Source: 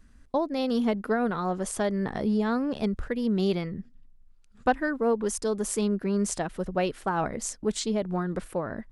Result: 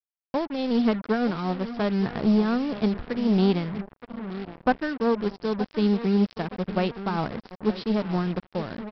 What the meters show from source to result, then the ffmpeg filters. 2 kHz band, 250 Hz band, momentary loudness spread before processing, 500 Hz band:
+0.5 dB, +4.0 dB, 5 LU, +0.5 dB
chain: -filter_complex "[0:a]equalizer=f=160:w=0.74:g=7.5,aeval=exprs='0.398*(cos(1*acos(clip(val(0)/0.398,-1,1)))-cos(1*PI/2))+0.00631*(cos(3*acos(clip(val(0)/0.398,-1,1)))-cos(3*PI/2))+0.0251*(cos(7*acos(clip(val(0)/0.398,-1,1)))-cos(7*PI/2))':c=same,asplit=2[a][b];[b]adelay=921,lowpass=f=1.8k:p=1,volume=-13.5dB,asplit=2[c][d];[d]adelay=921,lowpass=f=1.8k:p=1,volume=0.4,asplit=2[e][f];[f]adelay=921,lowpass=f=1.8k:p=1,volume=0.4,asplit=2[g][h];[h]adelay=921,lowpass=f=1.8k:p=1,volume=0.4[i];[a][c][e][g][i]amix=inputs=5:normalize=0,aresample=11025,acrusher=bits=5:mix=0:aa=0.5,aresample=44100"

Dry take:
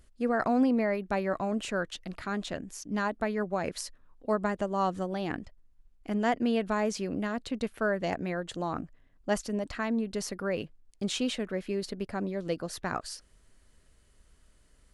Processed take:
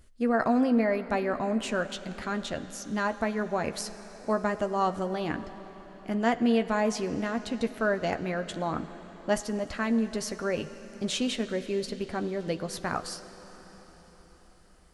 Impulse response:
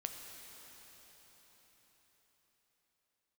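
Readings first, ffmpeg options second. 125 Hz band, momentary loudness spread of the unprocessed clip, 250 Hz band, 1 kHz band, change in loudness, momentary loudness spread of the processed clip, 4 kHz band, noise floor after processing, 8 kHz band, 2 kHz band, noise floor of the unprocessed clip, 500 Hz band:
+1.0 dB, 10 LU, +2.0 dB, +2.0 dB, +2.0 dB, 12 LU, +2.5 dB, -55 dBFS, +2.0 dB, +2.5 dB, -63 dBFS, +2.0 dB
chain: -filter_complex "[0:a]asplit=2[a][b];[b]highshelf=f=8.4k:g=10[c];[1:a]atrim=start_sample=2205,lowpass=6.4k,adelay=13[d];[c][d]afir=irnorm=-1:irlink=0,volume=-6.5dB[e];[a][e]amix=inputs=2:normalize=0,volume=1.5dB"

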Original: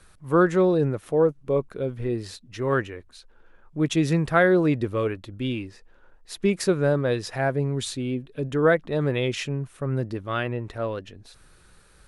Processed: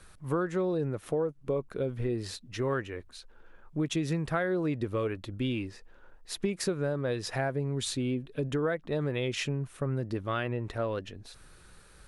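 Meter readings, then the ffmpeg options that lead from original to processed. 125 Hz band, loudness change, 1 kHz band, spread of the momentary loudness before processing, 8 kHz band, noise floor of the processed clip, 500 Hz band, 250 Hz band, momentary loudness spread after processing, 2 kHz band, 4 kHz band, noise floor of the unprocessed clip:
-6.0 dB, -7.5 dB, -8.5 dB, 12 LU, -3.0 dB, -56 dBFS, -8.0 dB, -7.5 dB, 9 LU, -9.0 dB, -3.5 dB, -55 dBFS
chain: -af "acompressor=threshold=-27dB:ratio=6"

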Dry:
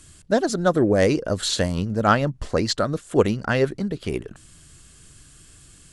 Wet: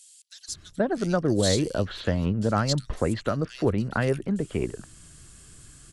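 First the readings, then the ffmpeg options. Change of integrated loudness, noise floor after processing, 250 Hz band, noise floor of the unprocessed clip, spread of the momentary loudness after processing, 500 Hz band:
-4.0 dB, -53 dBFS, -3.0 dB, -50 dBFS, 12 LU, -5.5 dB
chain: -filter_complex "[0:a]acrossover=split=180[a][b];[b]acompressor=threshold=-22dB:ratio=6[c];[a][c]amix=inputs=2:normalize=0,acrossover=split=3000[d][e];[d]adelay=480[f];[f][e]amix=inputs=2:normalize=0"

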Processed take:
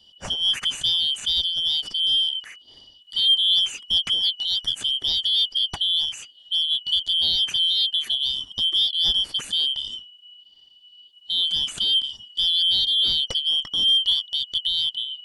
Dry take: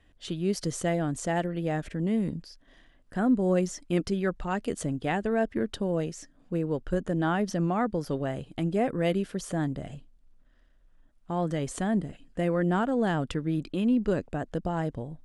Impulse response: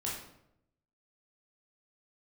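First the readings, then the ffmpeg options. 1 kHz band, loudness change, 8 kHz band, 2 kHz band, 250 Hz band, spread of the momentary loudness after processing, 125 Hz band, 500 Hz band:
under -10 dB, +9.0 dB, +3.5 dB, -5.0 dB, under -20 dB, 7 LU, under -15 dB, under -20 dB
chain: -filter_complex "[0:a]afftfilt=real='real(if(lt(b,272),68*(eq(floor(b/68),0)*2+eq(floor(b/68),1)*3+eq(floor(b/68),2)*0+eq(floor(b/68),3)*1)+mod(b,68),b),0)':imag='imag(if(lt(b,272),68*(eq(floor(b/68),0)*2+eq(floor(b/68),1)*3+eq(floor(b/68),2)*0+eq(floor(b/68),3)*1)+mod(b,68),b),0)':win_size=2048:overlap=0.75,asplit=2[a][b];[b]asoftclip=type=tanh:threshold=-27dB,volume=-5.5dB[c];[a][c]amix=inputs=2:normalize=0,lowshelf=f=61:g=8.5,acrossover=split=4900[d][e];[e]acompressor=threshold=-39dB:ratio=4:attack=1:release=60[f];[d][f]amix=inputs=2:normalize=0,volume=3.5dB"

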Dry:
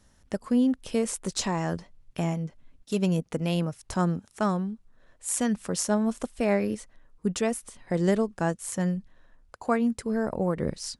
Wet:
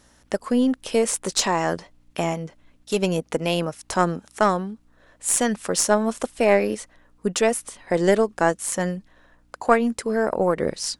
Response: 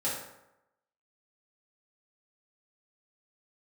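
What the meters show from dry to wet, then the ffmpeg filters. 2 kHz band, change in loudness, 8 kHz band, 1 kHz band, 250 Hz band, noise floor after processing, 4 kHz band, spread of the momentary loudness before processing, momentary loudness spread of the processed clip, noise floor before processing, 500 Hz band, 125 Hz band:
+9.5 dB, +5.5 dB, +8.0 dB, +9.0 dB, +1.5 dB, -59 dBFS, +8.5 dB, 10 LU, 10 LU, -62 dBFS, +8.0 dB, -1.0 dB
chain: -af "aeval=exprs='val(0)+0.00112*(sin(2*PI*60*n/s)+sin(2*PI*2*60*n/s)/2+sin(2*PI*3*60*n/s)/3+sin(2*PI*4*60*n/s)/4+sin(2*PI*5*60*n/s)/5)':c=same,bass=f=250:g=-13,treble=f=4k:g=-1,aeval=exprs='0.237*(cos(1*acos(clip(val(0)/0.237,-1,1)))-cos(1*PI/2))+0.0376*(cos(2*acos(clip(val(0)/0.237,-1,1)))-cos(2*PI/2))':c=same,volume=9dB"

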